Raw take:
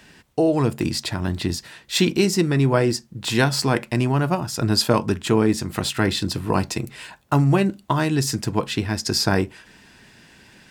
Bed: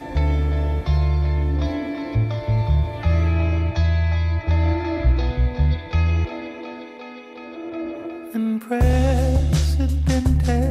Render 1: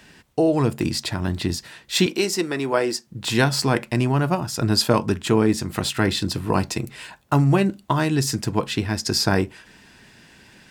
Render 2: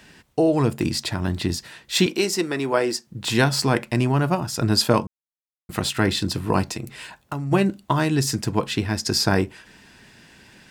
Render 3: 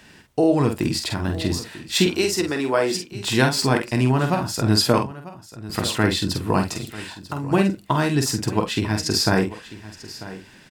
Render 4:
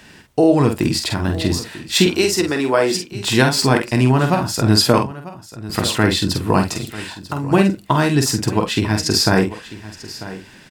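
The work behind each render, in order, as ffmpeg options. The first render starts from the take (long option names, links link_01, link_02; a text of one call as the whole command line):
ffmpeg -i in.wav -filter_complex "[0:a]asettb=1/sr,asplit=3[link_01][link_02][link_03];[link_01]atrim=end=2.064[link_04];[link_02]atrim=start=2.06:end=3.07,asetpts=PTS-STARTPTS,afade=type=in:duration=0.004:curve=qsin,afade=type=out:start_time=1.006:duration=0.004:curve=qsin,highpass=350[link_05];[link_03]atrim=start=3.066[link_06];[link_04][link_05]acrossfade=duration=0.004:curve1=hsin:curve2=qsin[link_07];[link_07][link_06]acrossfade=duration=0.004:curve1=qsin:curve2=hsin" out.wav
ffmpeg -i in.wav -filter_complex "[0:a]asplit=3[link_01][link_02][link_03];[link_01]afade=type=out:start_time=6.63:duration=0.02[link_04];[link_02]acompressor=threshold=-25dB:ratio=6:attack=3.2:release=140:knee=1:detection=peak,afade=type=in:start_time=6.63:duration=0.02,afade=type=out:start_time=7.51:duration=0.02[link_05];[link_03]afade=type=in:start_time=7.51:duration=0.02[link_06];[link_04][link_05][link_06]amix=inputs=3:normalize=0,asplit=3[link_07][link_08][link_09];[link_07]atrim=end=5.07,asetpts=PTS-STARTPTS,afade=type=out:start_time=5.066:duration=0.004:curve=hsin[link_10];[link_08]atrim=start=5.07:end=5.69,asetpts=PTS-STARTPTS,volume=0[link_11];[link_09]atrim=start=5.69,asetpts=PTS-STARTPTS,afade=type=in:duration=0.004:curve=hsin[link_12];[link_10][link_11][link_12]concat=n=3:v=0:a=1" out.wav
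ffmpeg -i in.wav -filter_complex "[0:a]asplit=2[link_01][link_02];[link_02]adelay=47,volume=-6dB[link_03];[link_01][link_03]amix=inputs=2:normalize=0,aecho=1:1:943:0.15" out.wav
ffmpeg -i in.wav -af "volume=4.5dB,alimiter=limit=-2dB:level=0:latency=1" out.wav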